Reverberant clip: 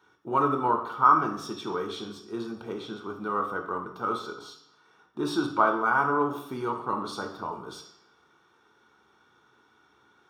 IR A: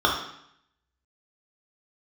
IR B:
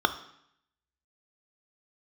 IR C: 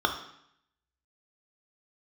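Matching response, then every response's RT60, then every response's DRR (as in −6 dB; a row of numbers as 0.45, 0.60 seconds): C; 0.70, 0.70, 0.70 seconds; −2.5, 9.0, 3.5 decibels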